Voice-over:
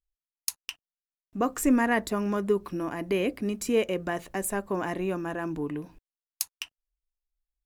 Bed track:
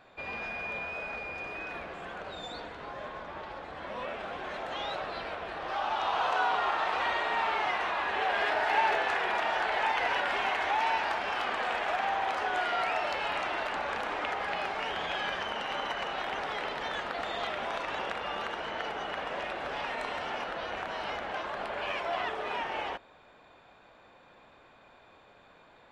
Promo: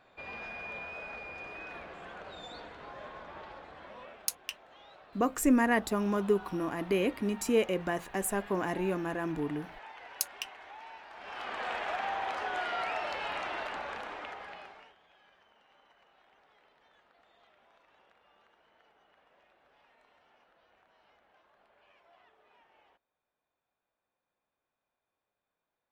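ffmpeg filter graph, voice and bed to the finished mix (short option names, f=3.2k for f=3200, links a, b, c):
-filter_complex "[0:a]adelay=3800,volume=-2dB[a];[1:a]volume=11dB,afade=t=out:st=3.43:d=0.95:silence=0.177828,afade=t=in:st=11.11:d=0.58:silence=0.158489,afade=t=out:st=13.6:d=1.36:silence=0.0446684[b];[a][b]amix=inputs=2:normalize=0"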